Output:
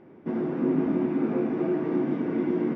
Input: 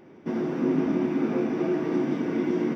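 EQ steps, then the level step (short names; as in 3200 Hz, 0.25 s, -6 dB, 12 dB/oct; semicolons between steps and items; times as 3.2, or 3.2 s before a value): LPF 2000 Hz 6 dB/oct; air absorption 130 m; 0.0 dB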